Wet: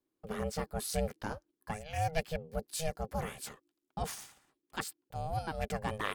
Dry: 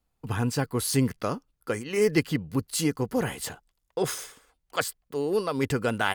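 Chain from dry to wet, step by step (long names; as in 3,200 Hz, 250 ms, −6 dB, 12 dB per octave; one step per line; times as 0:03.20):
ring modulation 320 Hz
level −6.5 dB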